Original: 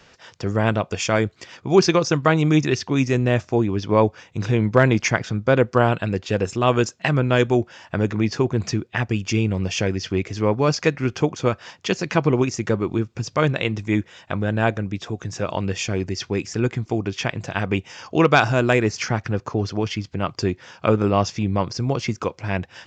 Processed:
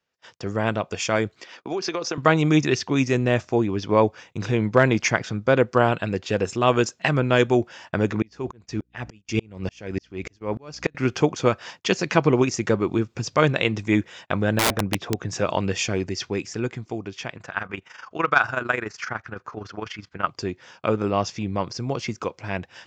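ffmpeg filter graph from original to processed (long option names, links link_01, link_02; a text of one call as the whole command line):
ffmpeg -i in.wav -filter_complex "[0:a]asettb=1/sr,asplit=3[link_01][link_02][link_03];[link_01]atrim=end=1.414[link_04];[link_02]atrim=start=1.41:end=2.18,asetpts=PTS-STARTPTS,afade=type=in:duration=0.004:curve=qsin,afade=type=out:start_time=0.766:duration=0.004:curve=qsin,acrossover=split=220 6600:gain=0.126 1 0.224[link_05][link_06][link_07];[link_05][link_06][link_07]amix=inputs=3:normalize=0,acompressor=threshold=-21dB:ratio=16:attack=3.2:release=140:knee=1:detection=peak[link_08];[link_03]atrim=start=2.176[link_09];[link_04][link_08]acrossfade=duration=0.004:curve1=hsin:curve2=qsin[link_10];[link_10][link_09]acrossfade=duration=0.004:curve1=qsin:curve2=hsin,asettb=1/sr,asplit=3[link_11][link_12][link_13];[link_11]atrim=end=8.224[link_14];[link_12]atrim=start=8.22:end=10.95,asetpts=PTS-STARTPTS,afade=type=in:duration=0.004:curve=qsin,afade=type=out:start_time=2.726:duration=0.004:curve=qsin,aeval=exprs='val(0)+0.0112*(sin(2*PI*60*n/s)+sin(2*PI*2*60*n/s)/2+sin(2*PI*3*60*n/s)/3+sin(2*PI*4*60*n/s)/4+sin(2*PI*5*60*n/s)/5)':channel_layout=same,aeval=exprs='val(0)*pow(10,-36*if(lt(mod(-3.4*n/s,1),2*abs(-3.4)/1000),1-mod(-3.4*n/s,1)/(2*abs(-3.4)/1000),(mod(-3.4*n/s,1)-2*abs(-3.4)/1000)/(1-2*abs(-3.4)/1000))/20)':channel_layout=same[link_15];[link_13]atrim=start=10.946[link_16];[link_14][link_15]acrossfade=duration=0.004:curve1=hsin:curve2=qsin[link_17];[link_17][link_16]acrossfade=duration=0.004:curve1=qsin:curve2=hsin,asettb=1/sr,asplit=3[link_18][link_19][link_20];[link_18]atrim=end=14.594[link_21];[link_19]atrim=start=14.59:end=15.29,asetpts=PTS-STARTPTS,afade=type=in:duration=0.004:curve=qsin,afade=type=out:start_time=0.696:duration=0.004:curve=qsin,aemphasis=mode=reproduction:type=75fm,aeval=exprs='(mod(6.31*val(0)+1,2)-1)/6.31':channel_layout=same[link_22];[link_20]atrim=start=15.286[link_23];[link_21][link_22]acrossfade=duration=0.004:curve1=hsin:curve2=qsin[link_24];[link_24][link_23]acrossfade=duration=0.004:curve1=qsin:curve2=hsin,asettb=1/sr,asplit=3[link_25][link_26][link_27];[link_25]atrim=end=17.374[link_28];[link_26]atrim=start=17.37:end=20.27,asetpts=PTS-STARTPTS,afade=type=in:duration=0.004:curve=qsin,afade=type=out:start_time=2.896:duration=0.004:curve=qsin,equalizer=frequency=1400:width_type=o:width=1.3:gain=14,tremolo=f=24:d=0.71[link_29];[link_27]atrim=start=20.266[link_30];[link_28][link_29]acrossfade=duration=0.004:curve1=hsin:curve2=qsin[link_31];[link_31][link_30]acrossfade=duration=0.004:curve1=qsin:curve2=hsin,agate=range=-26dB:threshold=-45dB:ratio=16:detection=peak,lowshelf=frequency=140:gain=-7,dynaudnorm=framelen=160:gausssize=21:maxgain=11.5dB,volume=-2.5dB" out.wav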